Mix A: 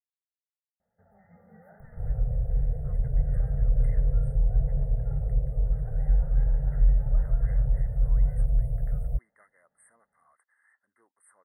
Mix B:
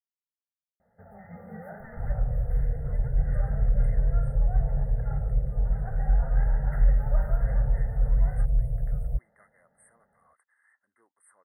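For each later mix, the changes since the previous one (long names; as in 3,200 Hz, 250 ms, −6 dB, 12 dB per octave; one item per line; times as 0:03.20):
first sound +12.0 dB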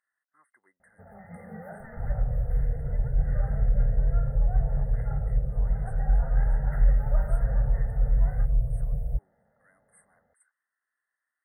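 speech: entry −2.50 s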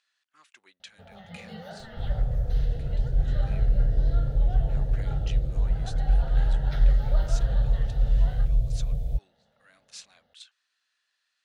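speech +4.5 dB
second sound: remove Chebyshev band-stop filter 180–450 Hz, order 2
master: remove linear-phase brick-wall band-stop 2,100–8,100 Hz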